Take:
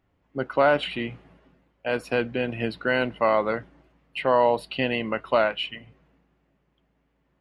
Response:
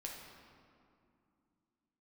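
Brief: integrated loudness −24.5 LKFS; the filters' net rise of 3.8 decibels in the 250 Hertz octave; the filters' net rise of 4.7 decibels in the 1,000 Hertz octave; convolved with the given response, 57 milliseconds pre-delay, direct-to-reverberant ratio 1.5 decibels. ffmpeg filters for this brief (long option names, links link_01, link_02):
-filter_complex "[0:a]equalizer=frequency=250:width_type=o:gain=4,equalizer=frequency=1000:width_type=o:gain=5.5,asplit=2[link_01][link_02];[1:a]atrim=start_sample=2205,adelay=57[link_03];[link_02][link_03]afir=irnorm=-1:irlink=0,volume=0.5dB[link_04];[link_01][link_04]amix=inputs=2:normalize=0,volume=-4.5dB"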